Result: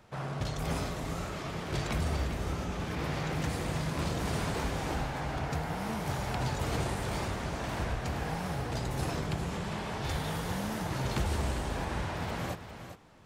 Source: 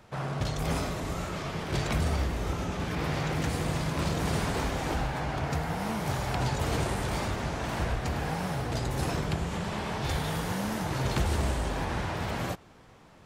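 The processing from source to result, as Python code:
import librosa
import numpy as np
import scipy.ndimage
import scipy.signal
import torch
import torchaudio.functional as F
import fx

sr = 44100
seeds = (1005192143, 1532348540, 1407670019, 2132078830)

y = x + 10.0 ** (-10.0 / 20.0) * np.pad(x, (int(402 * sr / 1000.0), 0))[:len(x)]
y = y * 10.0 ** (-3.5 / 20.0)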